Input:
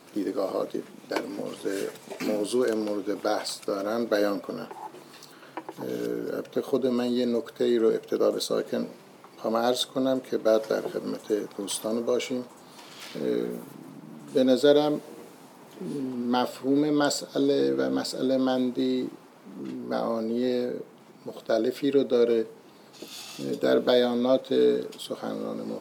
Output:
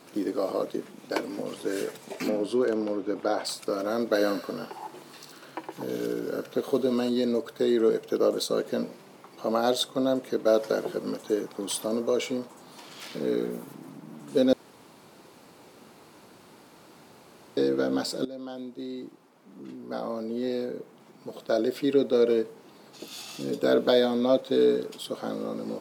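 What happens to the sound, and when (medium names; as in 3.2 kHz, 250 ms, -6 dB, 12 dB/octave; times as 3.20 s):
2.29–3.45 s: low-pass 2.4 kHz 6 dB/octave
4.13–7.09 s: feedback echo behind a high-pass 66 ms, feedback 65%, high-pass 1.9 kHz, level -6 dB
14.53–17.57 s: room tone
18.25–21.85 s: fade in, from -16 dB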